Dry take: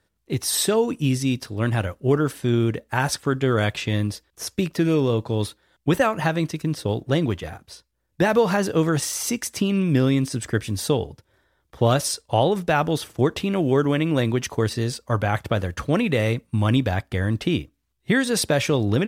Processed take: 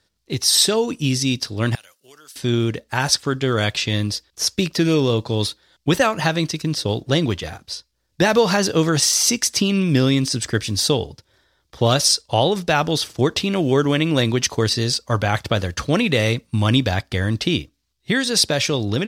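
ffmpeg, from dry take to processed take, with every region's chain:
-filter_complex "[0:a]asettb=1/sr,asplit=3[a][b][c];[a]atrim=end=1.754[d];[b]atrim=start=1.75:end=2.36,asetpts=PTS-STARTPTS,afade=t=in:d=0.004:c=qsin,afade=t=out:st=0.606:d=0.004:c=qsin,highpass=93,aderivative,acompressor=threshold=-52dB:ratio=2:attack=3.2:release=140:knee=1:detection=peak[e];[c]atrim=start=2.356[f];[d][e]acrossfade=d=0.004:c1=hsin:c2=qsin[g];[g][f]acrossfade=d=0.004:c1=qsin:c2=hsin,equalizer=f=4.8k:w=1:g=12,dynaudnorm=f=350:g=5:m=3dB"

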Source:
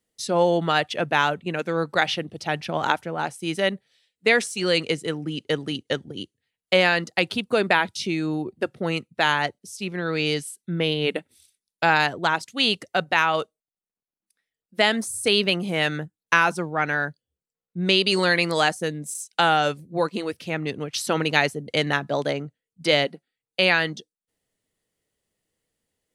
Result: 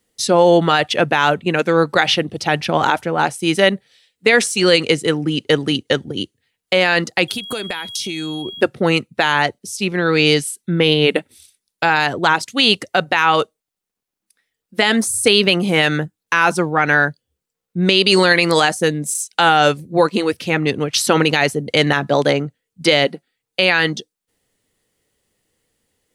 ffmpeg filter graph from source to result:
-filter_complex "[0:a]asettb=1/sr,asplit=3[a][b][c];[a]atrim=end=7.284[d];[b]atrim=start=7.28:end=8.61,asetpts=PTS-STARTPTS,afade=t=in:d=0.004:c=qsin,afade=t=out:st=1.326:d=0.004:c=qsin,aemphasis=mode=production:type=75fm,acompressor=threshold=-32dB:ratio=8:attack=3.2:release=140:knee=1:detection=peak,aeval=exprs='val(0)+0.00891*sin(2*PI*3300*n/s)':c=same[e];[c]atrim=start=8.606[f];[d][e]acrossfade=d=0.004:c1=hsin:c2=qsin[g];[g][f]acrossfade=d=0.004:c1=qsin:c2=hsin,equalizer=f=170:t=o:w=0.32:g=-2.5,bandreject=f=640:w=14,alimiter=level_in=11.5dB:limit=-1dB:release=50:level=0:latency=1,volume=-1dB"

